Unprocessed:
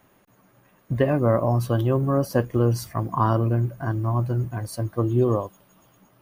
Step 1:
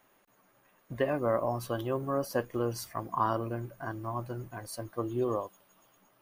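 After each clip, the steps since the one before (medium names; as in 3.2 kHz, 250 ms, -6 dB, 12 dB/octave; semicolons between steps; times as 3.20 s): peaking EQ 97 Hz -13 dB 2.9 oct; trim -4.5 dB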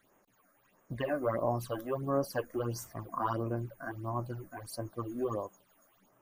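phase shifter stages 8, 1.5 Hz, lowest notch 110–4300 Hz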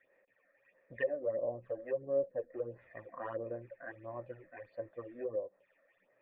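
cascade formant filter e; low-pass that closes with the level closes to 580 Hz, closed at -39.5 dBFS; tilt shelf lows -9.5 dB, about 1.4 kHz; trim +13 dB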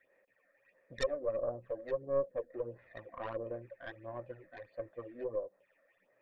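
tracing distortion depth 0.26 ms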